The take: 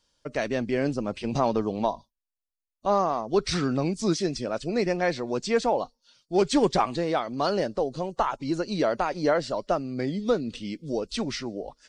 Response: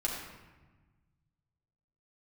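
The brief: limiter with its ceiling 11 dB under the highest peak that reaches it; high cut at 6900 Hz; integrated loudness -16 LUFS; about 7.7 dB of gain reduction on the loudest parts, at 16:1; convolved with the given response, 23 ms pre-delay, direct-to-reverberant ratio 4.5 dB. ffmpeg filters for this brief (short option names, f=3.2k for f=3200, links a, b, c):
-filter_complex "[0:a]lowpass=6.9k,acompressor=threshold=-25dB:ratio=16,alimiter=level_in=1dB:limit=-24dB:level=0:latency=1,volume=-1dB,asplit=2[a][b];[1:a]atrim=start_sample=2205,adelay=23[c];[b][c]afir=irnorm=-1:irlink=0,volume=-9.5dB[d];[a][d]amix=inputs=2:normalize=0,volume=17.5dB"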